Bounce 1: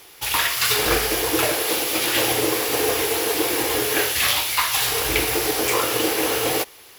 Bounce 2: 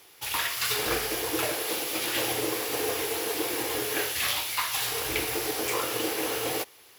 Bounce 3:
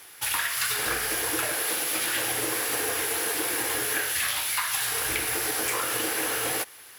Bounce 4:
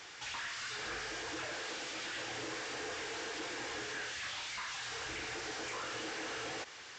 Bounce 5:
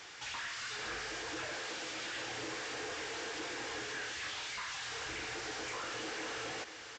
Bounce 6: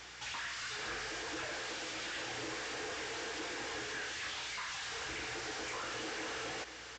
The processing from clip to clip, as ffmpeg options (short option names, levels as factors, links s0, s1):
-af "highpass=67,volume=0.398"
-af "equalizer=f=400:t=o:w=0.67:g=-4,equalizer=f=1600:t=o:w=0.67:g=8,equalizer=f=10000:t=o:w=0.67:g=8,acompressor=threshold=0.0447:ratio=6,volume=1.41"
-af "aresample=16000,asoftclip=type=tanh:threshold=0.0376,aresample=44100,alimiter=level_in=4.22:limit=0.0631:level=0:latency=1:release=37,volume=0.237,volume=1.12"
-af "aecho=1:1:497:0.237"
-af "aeval=exprs='val(0)+0.000562*(sin(2*PI*60*n/s)+sin(2*PI*2*60*n/s)/2+sin(2*PI*3*60*n/s)/3+sin(2*PI*4*60*n/s)/4+sin(2*PI*5*60*n/s)/5)':c=same"